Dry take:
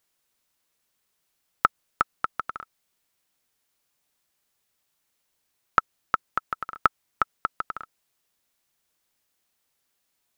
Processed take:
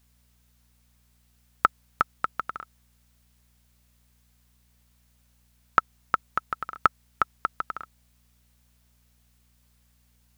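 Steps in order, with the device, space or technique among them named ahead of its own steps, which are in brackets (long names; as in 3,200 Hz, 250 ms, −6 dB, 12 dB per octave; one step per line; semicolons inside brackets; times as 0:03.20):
video cassette with head-switching buzz (hum with harmonics 60 Hz, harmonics 4, −65 dBFS −7 dB per octave; white noise bed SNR 36 dB)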